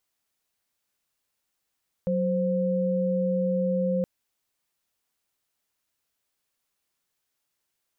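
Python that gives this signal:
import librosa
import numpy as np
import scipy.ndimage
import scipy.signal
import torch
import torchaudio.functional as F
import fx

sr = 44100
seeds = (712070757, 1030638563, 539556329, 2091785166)

y = fx.chord(sr, length_s=1.97, notes=(54, 72), wave='sine', level_db=-25.0)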